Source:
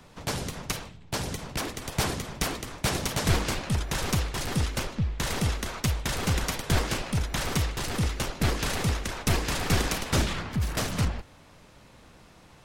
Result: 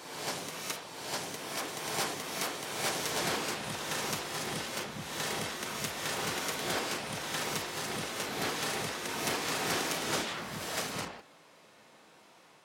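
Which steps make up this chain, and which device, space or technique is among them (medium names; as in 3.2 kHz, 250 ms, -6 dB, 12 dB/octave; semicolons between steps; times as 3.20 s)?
ghost voice (reverse; reverberation RT60 1.5 s, pre-delay 6 ms, DRR -0.5 dB; reverse; high-pass 320 Hz 12 dB/octave); trim -5.5 dB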